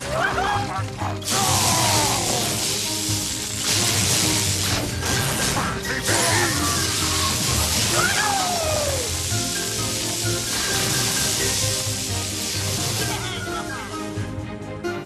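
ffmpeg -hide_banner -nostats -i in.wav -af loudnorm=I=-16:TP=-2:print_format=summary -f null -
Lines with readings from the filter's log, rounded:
Input Integrated:    -21.2 LUFS
Input True Peak:      -5.4 dBTP
Input LRA:             5.9 LU
Input Threshold:     -31.3 LUFS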